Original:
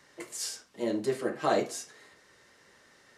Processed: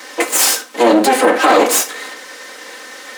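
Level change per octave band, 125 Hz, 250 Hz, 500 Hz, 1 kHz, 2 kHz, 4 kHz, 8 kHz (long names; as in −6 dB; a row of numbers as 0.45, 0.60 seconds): can't be measured, +18.0 dB, +17.0 dB, +21.5 dB, +23.5 dB, +21.5 dB, +23.0 dB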